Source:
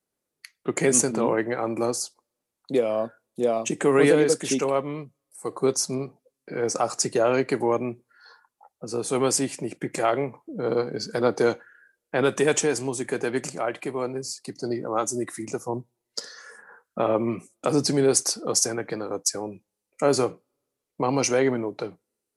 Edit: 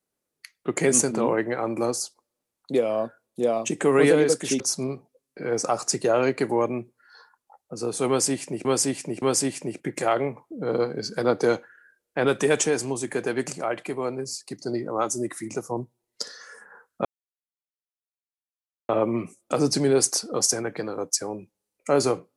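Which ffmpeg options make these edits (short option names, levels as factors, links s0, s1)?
-filter_complex "[0:a]asplit=5[s0][s1][s2][s3][s4];[s0]atrim=end=4.602[s5];[s1]atrim=start=5.708:end=9.762[s6];[s2]atrim=start=9.188:end=9.762[s7];[s3]atrim=start=9.188:end=17.02,asetpts=PTS-STARTPTS,afade=t=out:st=7.828:d=0.004:c=hsin,apad=pad_dur=1.84[s8];[s4]atrim=start=17.02,asetpts=PTS-STARTPTS,afade=t=in:d=0.004:c=hsin[s9];[s5][s6]acrossfade=d=0.004:c1=hsin:c2=hsin[s10];[s10][s7]acrossfade=d=0.004:c1=hsin:c2=hsin[s11];[s8][s9]concat=n=2:v=0:a=1[s12];[s11][s12]acrossfade=d=0.004:c1=hsin:c2=hsin"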